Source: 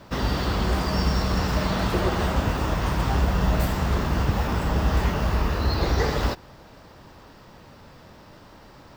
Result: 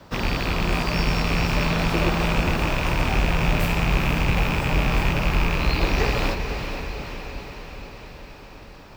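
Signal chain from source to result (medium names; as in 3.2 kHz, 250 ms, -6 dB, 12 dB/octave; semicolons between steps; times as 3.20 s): rattle on loud lows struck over -25 dBFS, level -15 dBFS; frequency shift -19 Hz; echo that smears into a reverb 462 ms, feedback 63%, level -7.5 dB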